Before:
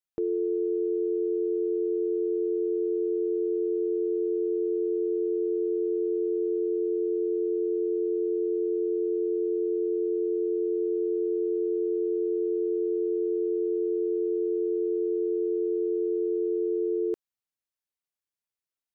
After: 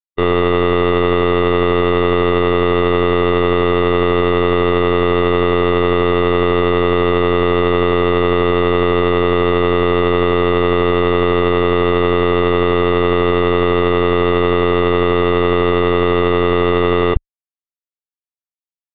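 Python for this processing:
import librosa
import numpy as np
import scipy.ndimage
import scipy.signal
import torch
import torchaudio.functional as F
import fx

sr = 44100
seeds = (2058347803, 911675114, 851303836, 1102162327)

y = fx.fuzz(x, sr, gain_db=52.0, gate_db=-57.0)
y = fx.lpc_vocoder(y, sr, seeds[0], excitation='pitch_kept', order=16)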